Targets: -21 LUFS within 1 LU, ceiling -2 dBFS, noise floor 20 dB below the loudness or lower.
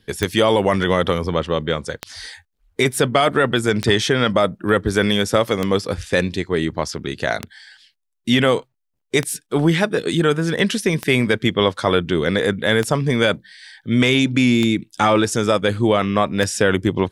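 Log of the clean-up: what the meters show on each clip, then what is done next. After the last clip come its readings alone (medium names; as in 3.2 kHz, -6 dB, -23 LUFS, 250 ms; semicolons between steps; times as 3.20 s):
clicks found 10; loudness -19.0 LUFS; peak level -2.0 dBFS; loudness target -21.0 LUFS
-> de-click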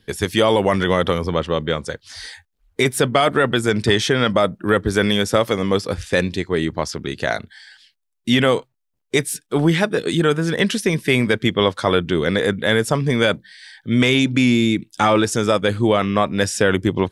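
clicks found 0; loudness -19.0 LUFS; peak level -2.0 dBFS; loudness target -21.0 LUFS
-> trim -2 dB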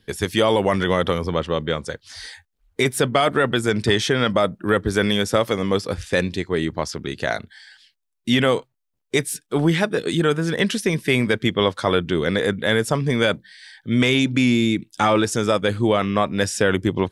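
loudness -21.0 LUFS; peak level -4.0 dBFS; noise floor -75 dBFS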